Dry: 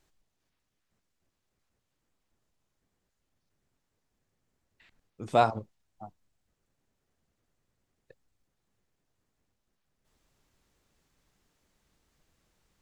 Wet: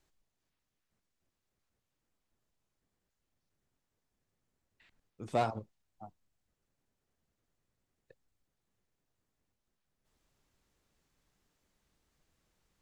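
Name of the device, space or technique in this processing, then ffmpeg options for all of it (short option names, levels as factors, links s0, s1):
one-band saturation: -filter_complex "[0:a]acrossover=split=550|4500[s0][s1][s2];[s1]asoftclip=type=tanh:threshold=0.0531[s3];[s0][s3][s2]amix=inputs=3:normalize=0,volume=0.596"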